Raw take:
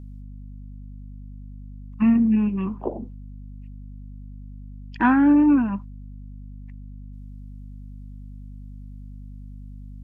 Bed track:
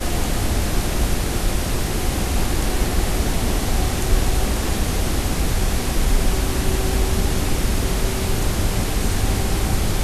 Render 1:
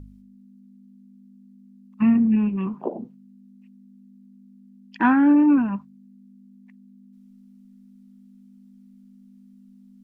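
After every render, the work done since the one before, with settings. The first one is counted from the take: de-hum 50 Hz, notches 3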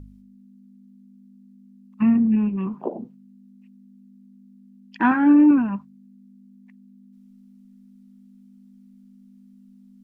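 2.03–2.71 high shelf 2500 Hz -6.5 dB; 5.1–5.51 doubler 13 ms -4.5 dB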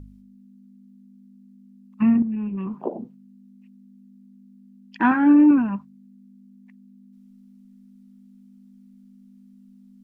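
2.22–2.83 compressor, threshold -25 dBFS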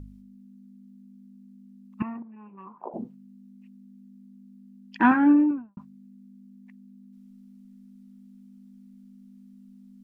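2.02–2.94 band-pass 1000 Hz, Q 2.3; 5.04–5.77 studio fade out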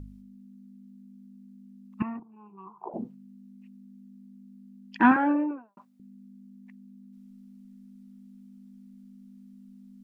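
2.19–2.89 fixed phaser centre 370 Hz, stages 8; 5.16–6 resonant high-pass 530 Hz, resonance Q 2.2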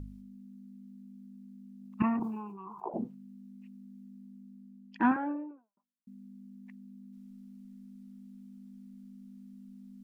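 1.78–2.87 sustainer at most 39 dB/s; 4.02–6.07 studio fade out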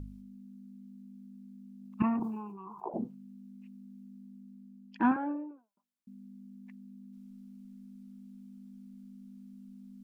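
notch 1900 Hz, Q 17; dynamic EQ 2000 Hz, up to -3 dB, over -54 dBFS, Q 0.86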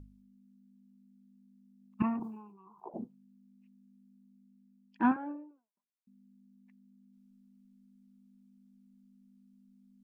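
upward expander 1.5:1, over -47 dBFS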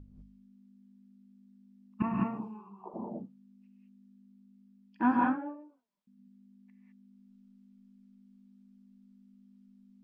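air absorption 87 m; non-linear reverb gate 0.23 s rising, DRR -2.5 dB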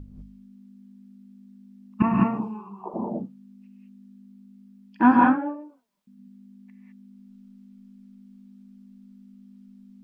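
gain +10 dB

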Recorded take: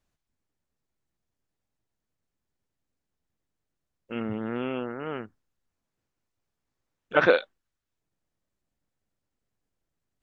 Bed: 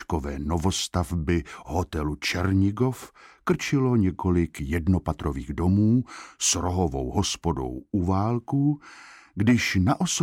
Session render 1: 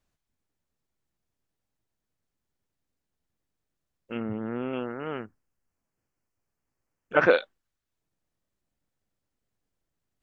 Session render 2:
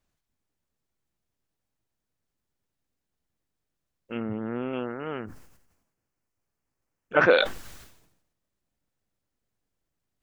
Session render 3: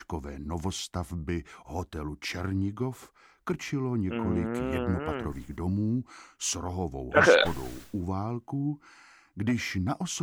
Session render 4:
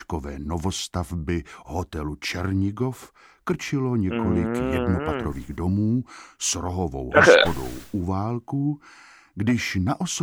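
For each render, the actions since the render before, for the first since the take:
4.17–4.73 air absorption 480 m; 5.23–7.31 bell 3700 Hz -14 dB 0.36 oct
sustainer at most 64 dB/s
add bed -8 dB
gain +6 dB; limiter -1 dBFS, peak gain reduction 1 dB

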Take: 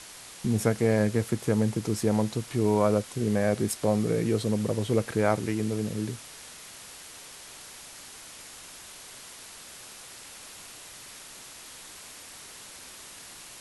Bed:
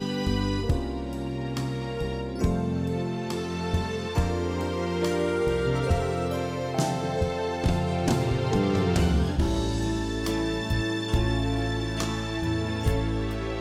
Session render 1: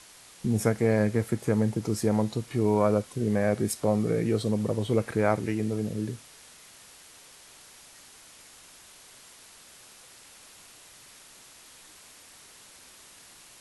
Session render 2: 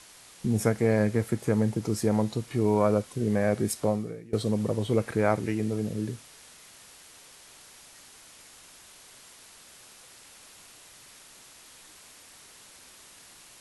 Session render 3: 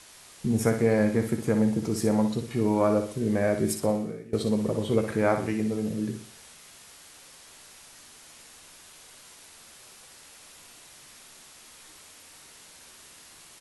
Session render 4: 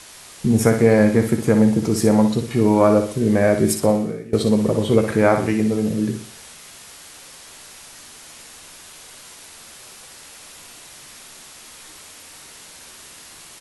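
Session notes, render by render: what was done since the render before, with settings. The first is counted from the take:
noise print and reduce 6 dB
3.86–4.33 fade out quadratic, to -22.5 dB
doubler 13 ms -10.5 dB; flutter echo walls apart 10.4 m, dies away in 0.44 s
gain +8.5 dB; limiter -2 dBFS, peak gain reduction 1.5 dB

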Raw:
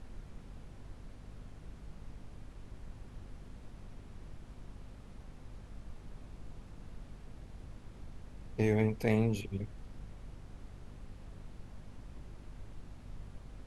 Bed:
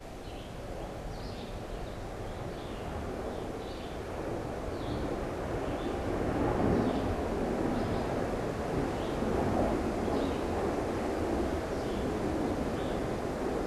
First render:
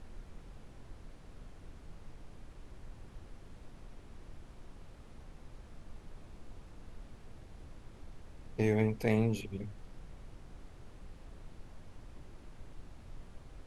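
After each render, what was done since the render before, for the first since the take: notches 50/100/150/200/250 Hz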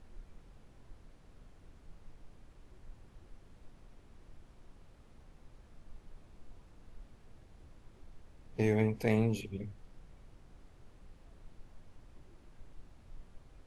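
noise print and reduce 6 dB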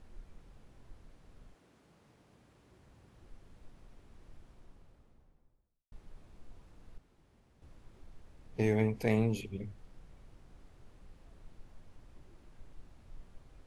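1.53–3.21 HPF 210 Hz -> 59 Hz; 4.37–5.92 studio fade out; 6.98–7.62 room tone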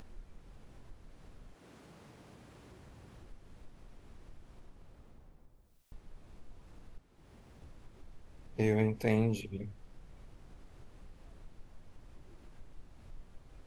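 upward compressor, threshold -46 dBFS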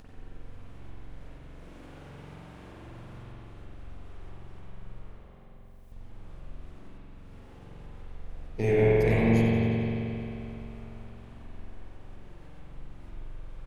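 frequency-shifting echo 90 ms, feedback 63%, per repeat -31 Hz, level -11.5 dB; spring tank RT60 3.2 s, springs 44 ms, chirp 80 ms, DRR -8 dB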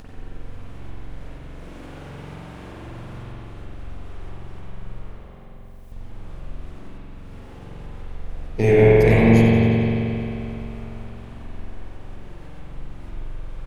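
gain +9 dB

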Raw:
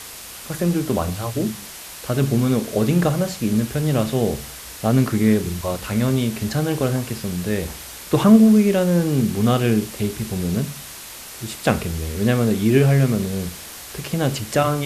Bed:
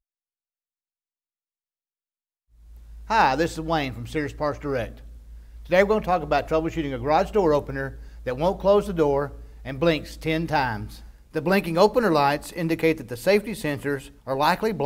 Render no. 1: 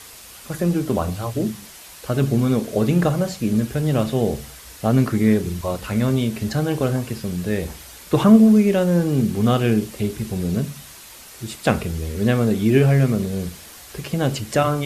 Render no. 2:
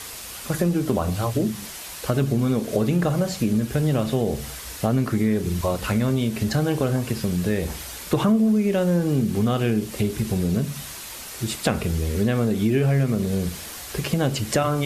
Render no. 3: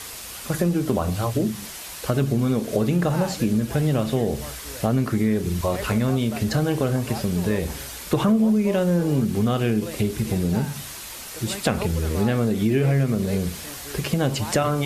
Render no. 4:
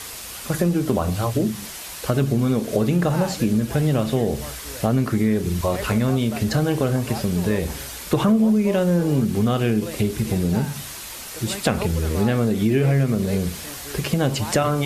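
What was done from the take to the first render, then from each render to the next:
denoiser 6 dB, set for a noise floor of -37 dBFS
in parallel at -2 dB: limiter -10 dBFS, peak gain reduction 7.5 dB; on the sum: compressor 3:1, threshold -20 dBFS, peak gain reduction 12 dB
add bed -15.5 dB
gain +1.5 dB

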